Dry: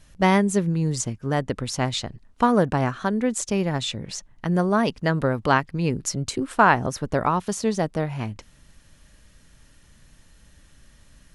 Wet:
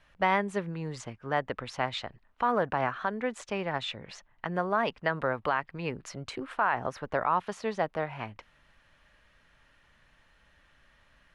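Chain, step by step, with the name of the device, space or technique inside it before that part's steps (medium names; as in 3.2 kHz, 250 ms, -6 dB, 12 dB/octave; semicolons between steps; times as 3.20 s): DJ mixer with the lows and highs turned down (three-band isolator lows -14 dB, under 560 Hz, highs -22 dB, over 3.2 kHz; peak limiter -15 dBFS, peak gain reduction 10.5 dB)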